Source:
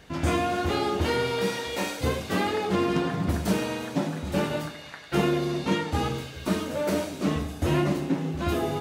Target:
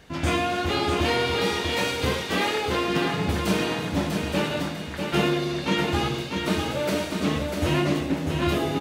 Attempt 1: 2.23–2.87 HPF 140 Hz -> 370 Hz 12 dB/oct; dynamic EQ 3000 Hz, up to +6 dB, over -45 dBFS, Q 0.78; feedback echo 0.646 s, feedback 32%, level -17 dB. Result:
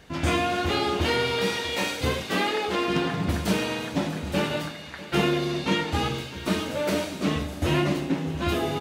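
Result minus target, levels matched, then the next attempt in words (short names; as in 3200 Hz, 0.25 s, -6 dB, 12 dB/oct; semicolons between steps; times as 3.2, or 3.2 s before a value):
echo-to-direct -12 dB
2.23–2.87 HPF 140 Hz -> 370 Hz 12 dB/oct; dynamic EQ 3000 Hz, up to +6 dB, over -45 dBFS, Q 0.78; feedback echo 0.646 s, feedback 32%, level -5 dB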